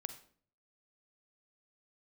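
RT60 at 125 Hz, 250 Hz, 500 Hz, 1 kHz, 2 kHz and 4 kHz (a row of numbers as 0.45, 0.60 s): 0.85, 0.65, 0.55, 0.45, 0.40, 0.40 s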